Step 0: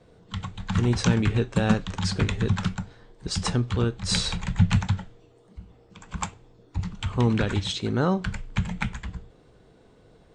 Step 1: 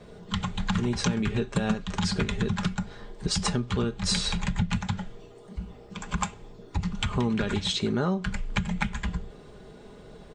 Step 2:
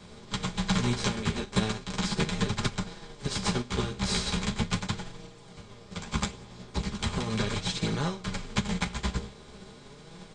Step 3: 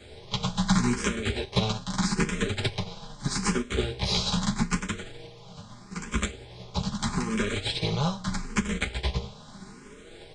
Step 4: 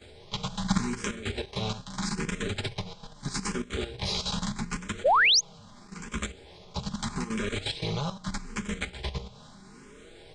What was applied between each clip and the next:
comb 4.9 ms, depth 48%; compressor 5:1, threshold -32 dBFS, peak gain reduction 17 dB; gain +7.5 dB
per-bin compression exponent 0.4; chorus voices 2, 0.38 Hz, delay 11 ms, depth 5 ms; upward expander 2.5:1, over -32 dBFS
endless phaser +0.79 Hz; gain +5 dB
notches 60/120/180 Hz; painted sound rise, 5.04–5.41, 460–6900 Hz -19 dBFS; level quantiser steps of 10 dB

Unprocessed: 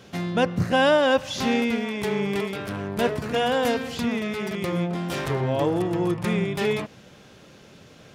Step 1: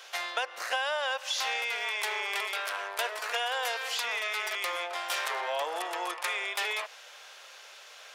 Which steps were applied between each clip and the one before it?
Bessel high-pass 1000 Hz, order 6; compressor 10:1, threshold -33 dBFS, peak gain reduction 13 dB; gain +5.5 dB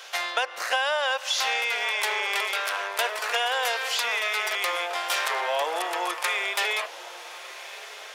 diffused feedback echo 1.209 s, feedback 44%, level -16 dB; gain +5.5 dB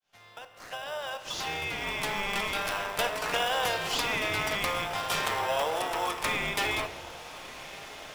opening faded in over 2.71 s; in parallel at -6 dB: sample-and-hold 20×; on the sum: shoebox room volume 520 m³, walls mixed, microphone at 0.48 m; gain -4.5 dB

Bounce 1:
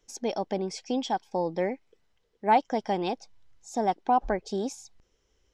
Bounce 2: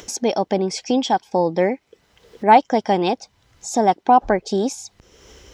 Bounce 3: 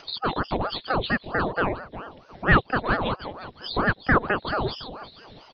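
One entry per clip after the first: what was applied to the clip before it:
in parallel at +1.5 dB: upward compressor, threshold -28 dBFS; on the sum: HPF 56 Hz; gain +3 dB
nonlinear frequency compression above 3400 Hz 4:1; frequency-shifting echo 0.358 s, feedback 31%, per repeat -62 Hz, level -13 dB; ring modulator with a swept carrier 580 Hz, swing 80%, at 4.4 Hz; gain -3.5 dB

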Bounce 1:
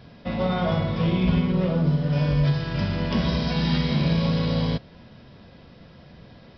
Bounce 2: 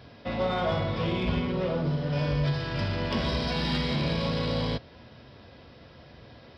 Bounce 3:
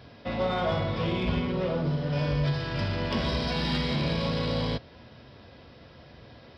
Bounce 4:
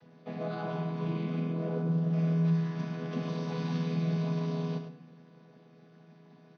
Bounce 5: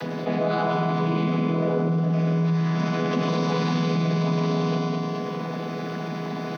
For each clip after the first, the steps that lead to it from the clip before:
HPF 55 Hz; bell 180 Hz -10.5 dB 0.58 oct; in parallel at -6.5 dB: soft clip -28 dBFS, distortion -10 dB; on the sum: gain -3 dB
nothing audible
chord vocoder major triad, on E3; on a send: echo 0.104 s -8.5 dB; on the sum: shoebox room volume 290 m³, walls mixed, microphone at 0.33 m; gain -3.5 dB
HPF 190 Hz 12 dB/oct; feedback echo 0.208 s, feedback 39%, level -8 dB; fast leveller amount 70%; gain +8 dB

